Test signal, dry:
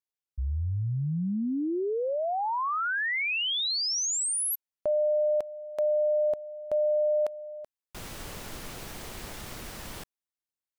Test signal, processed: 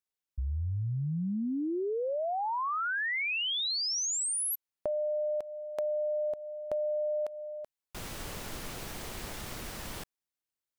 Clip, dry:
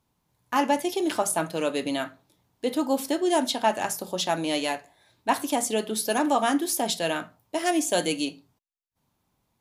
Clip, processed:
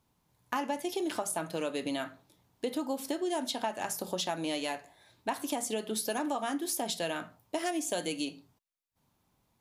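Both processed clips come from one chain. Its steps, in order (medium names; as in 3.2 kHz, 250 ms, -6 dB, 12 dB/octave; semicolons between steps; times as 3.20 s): compression, threshold -30 dBFS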